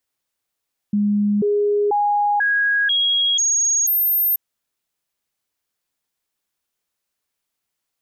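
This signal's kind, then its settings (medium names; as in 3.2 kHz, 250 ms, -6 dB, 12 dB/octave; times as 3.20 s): stepped sine 206 Hz up, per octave 1, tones 7, 0.49 s, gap 0.00 s -15 dBFS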